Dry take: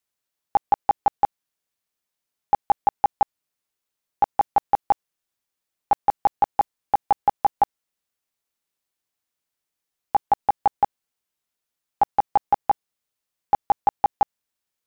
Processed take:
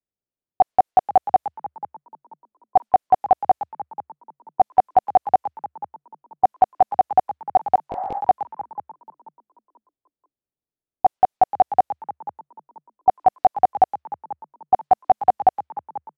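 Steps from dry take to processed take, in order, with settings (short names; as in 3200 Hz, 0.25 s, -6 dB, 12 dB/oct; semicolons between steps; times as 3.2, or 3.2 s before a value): on a send: frequency-shifting echo 0.447 s, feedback 41%, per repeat +75 Hz, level -12.5 dB; on the sum: low-pass opened by the level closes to 510 Hz, open at -18 dBFS; dynamic EQ 730 Hz, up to +5 dB, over -30 dBFS, Q 1.8; spectral repair 7.3–7.51, 590–2300 Hz; speed mistake 48 kHz file played as 44.1 kHz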